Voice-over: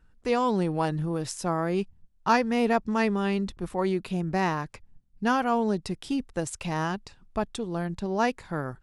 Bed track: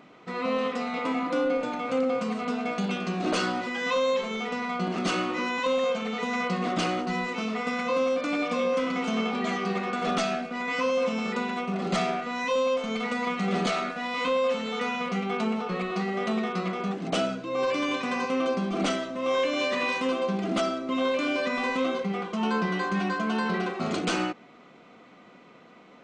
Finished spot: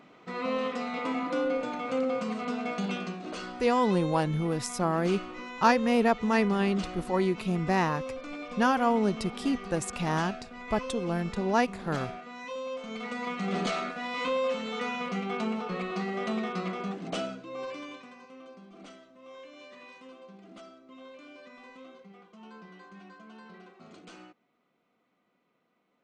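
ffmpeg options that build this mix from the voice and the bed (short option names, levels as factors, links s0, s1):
-filter_complex "[0:a]adelay=3350,volume=1[s0];[1:a]volume=1.88,afade=t=out:st=2.99:d=0.22:silence=0.354813,afade=t=in:st=12.62:d=0.96:silence=0.375837,afade=t=out:st=16.69:d=1.46:silence=0.112202[s1];[s0][s1]amix=inputs=2:normalize=0"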